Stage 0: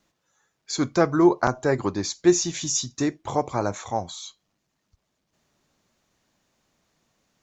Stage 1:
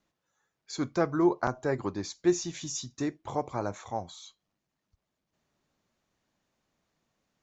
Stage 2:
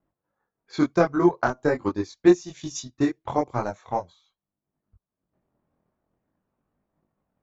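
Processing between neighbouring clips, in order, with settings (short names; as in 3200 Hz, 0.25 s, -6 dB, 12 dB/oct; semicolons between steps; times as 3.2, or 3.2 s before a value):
high shelf 5000 Hz -6.5 dB; gain -7 dB
low-pass opened by the level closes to 1100 Hz, open at -28 dBFS; transient shaper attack +8 dB, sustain -10 dB; chorus voices 2, 0.43 Hz, delay 22 ms, depth 2.2 ms; gain +5.5 dB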